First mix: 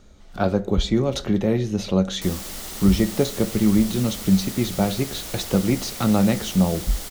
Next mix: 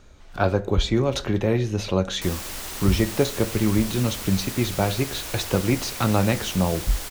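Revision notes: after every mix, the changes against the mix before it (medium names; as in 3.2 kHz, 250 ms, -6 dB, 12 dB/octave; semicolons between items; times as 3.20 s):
master: add graphic EQ with 31 bands 100 Hz +5 dB, 200 Hz -8 dB, 1 kHz +5 dB, 1.6 kHz +5 dB, 2.5 kHz +5 dB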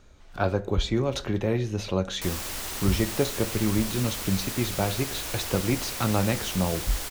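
speech -4.0 dB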